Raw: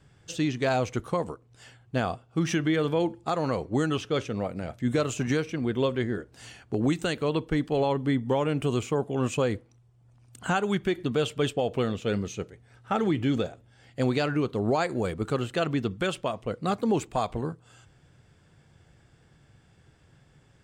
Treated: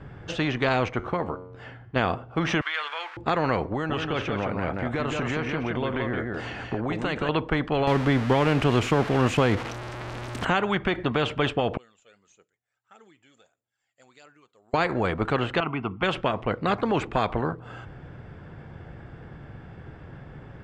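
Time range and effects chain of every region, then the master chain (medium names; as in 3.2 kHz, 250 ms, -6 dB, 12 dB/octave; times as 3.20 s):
0.88–1.96 s: treble shelf 7.6 kHz -7.5 dB + feedback comb 91 Hz, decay 0.68 s, mix 50%
2.61–3.17 s: jump at every zero crossing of -40.5 dBFS + high-pass 1.3 kHz 24 dB/octave + doubling 14 ms -11.5 dB
3.72–7.29 s: compression 5:1, threshold -30 dBFS + delay 173 ms -5 dB
7.87–10.45 s: zero-crossing glitches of -24 dBFS + bass shelf 450 Hz +10.5 dB
11.77–14.74 s: band-pass filter 7.3 kHz, Q 14 + phaser 1.6 Hz, delay 1.8 ms, feedback 41%
15.60–16.03 s: high-pass 280 Hz 6 dB/octave + distance through air 280 m + static phaser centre 2.6 kHz, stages 8
whole clip: low-pass 1.7 kHz 12 dB/octave; spectrum-flattening compressor 2:1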